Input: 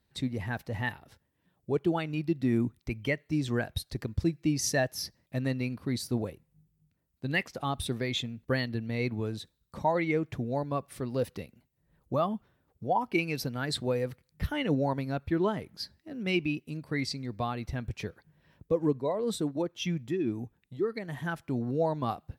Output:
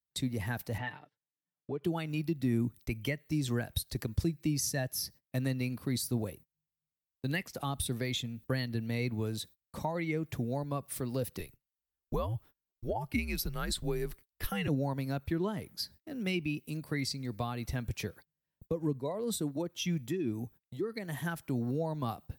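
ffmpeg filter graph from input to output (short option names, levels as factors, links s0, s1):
-filter_complex "[0:a]asettb=1/sr,asplit=3[s0][s1][s2];[s0]atrim=end=0.784[s3];[s1]atrim=start=0.78:end=1.84,asetpts=PTS-STARTPTS,afade=t=in:d=0.004:c=qsin,afade=t=out:st=1.056:d=0.004:c=qsin,highpass=150,lowpass=3200,aecho=1:1:6.7:0.68,atrim=end_sample=46746,acompressor=threshold=0.0158:ratio=2:attack=3.2:release=140:knee=1:detection=peak[s4];[s2]atrim=start=1.836[s5];[s3][s4]acrossfade=d=0.004:c1=hsin:c2=qsin[s6];[s6][s5]acrossfade=d=0.004:c1=qsin:c2=hsin,asettb=1/sr,asplit=3[s7][s8][s9];[s7]atrim=end=11.394[s10];[s8]atrim=start=11.39:end=14.68,asetpts=PTS-STARTPTS,afade=t=in:d=0.004:c=qsin,afade=t=out:st=3.286:d=0.004:c=qsin,highpass=f=77:p=1,afreqshift=-100[s11];[s9]atrim=start=14.676[s12];[s10][s11]acrossfade=d=0.004:c1=hsin:c2=qsin[s13];[s13][s12]acrossfade=d=0.004:c1=qsin:c2=hsin,aemphasis=mode=production:type=50fm,acrossover=split=220[s14][s15];[s15]acompressor=threshold=0.0178:ratio=3[s16];[s14][s16]amix=inputs=2:normalize=0,agate=range=0.0355:threshold=0.00282:ratio=16:detection=peak"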